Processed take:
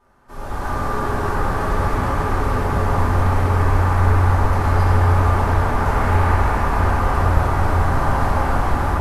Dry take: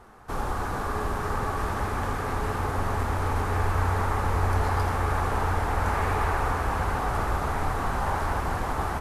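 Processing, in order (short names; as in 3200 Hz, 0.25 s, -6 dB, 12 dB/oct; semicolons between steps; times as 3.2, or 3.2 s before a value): AGC gain up to 11 dB; reverb RT60 3.3 s, pre-delay 3 ms, DRR -8.5 dB; gain -13 dB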